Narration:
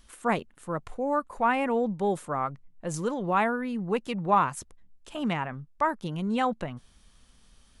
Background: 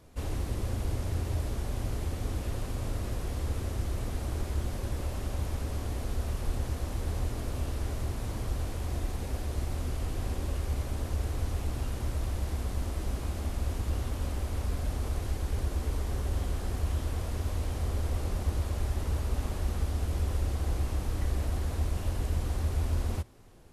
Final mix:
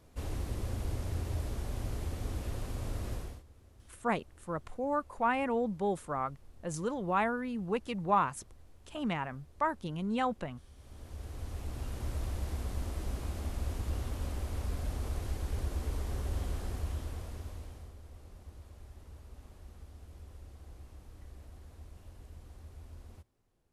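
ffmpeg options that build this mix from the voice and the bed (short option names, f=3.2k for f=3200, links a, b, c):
-filter_complex "[0:a]adelay=3800,volume=-5dB[a];[1:a]volume=18dB,afade=t=out:st=3.14:d=0.29:silence=0.0794328,afade=t=in:st=10.74:d=1.41:silence=0.0794328,afade=t=out:st=16.54:d=1.41:silence=0.149624[b];[a][b]amix=inputs=2:normalize=0"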